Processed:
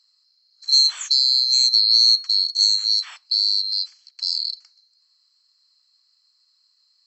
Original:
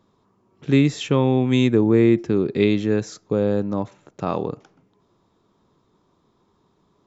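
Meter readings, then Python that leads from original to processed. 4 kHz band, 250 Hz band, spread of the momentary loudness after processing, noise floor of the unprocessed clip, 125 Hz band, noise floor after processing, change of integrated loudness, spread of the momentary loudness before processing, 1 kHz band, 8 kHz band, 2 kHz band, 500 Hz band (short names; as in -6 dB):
+22.0 dB, under -40 dB, 14 LU, -65 dBFS, under -40 dB, -65 dBFS, +4.0 dB, 13 LU, under -20 dB, n/a, under -10 dB, under -40 dB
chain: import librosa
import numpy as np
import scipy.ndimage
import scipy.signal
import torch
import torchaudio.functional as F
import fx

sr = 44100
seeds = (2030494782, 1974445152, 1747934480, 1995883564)

y = fx.band_swap(x, sr, width_hz=4000)
y = scipy.signal.sosfilt(scipy.signal.cheby2(4, 60, 270.0, 'highpass', fs=sr, output='sos'), y)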